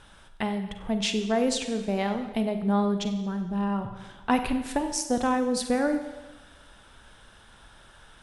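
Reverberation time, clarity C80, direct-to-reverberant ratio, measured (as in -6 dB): 1.2 s, 10.5 dB, 7.5 dB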